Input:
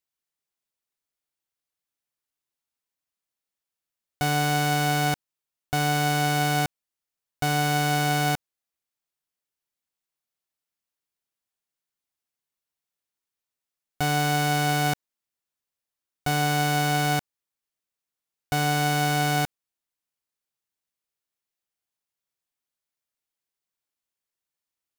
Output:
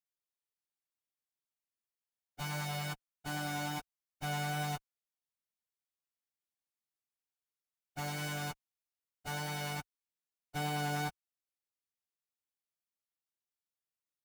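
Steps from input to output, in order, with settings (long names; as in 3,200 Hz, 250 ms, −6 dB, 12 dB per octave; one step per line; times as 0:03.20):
one-sided soft clipper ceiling −29 dBFS
pitch vibrato 1.4 Hz 13 cents
time stretch by phase vocoder 0.57×
level −7 dB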